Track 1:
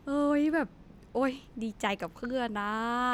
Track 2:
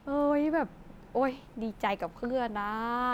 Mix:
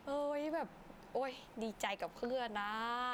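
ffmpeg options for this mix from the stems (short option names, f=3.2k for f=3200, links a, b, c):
-filter_complex "[0:a]equalizer=f=210:t=o:w=0.31:g=-5,volume=-5.5dB[a];[1:a]volume=-1,volume=-0.5dB[b];[a][b]amix=inputs=2:normalize=0,lowshelf=f=140:g=-10.5,acompressor=threshold=-35dB:ratio=6"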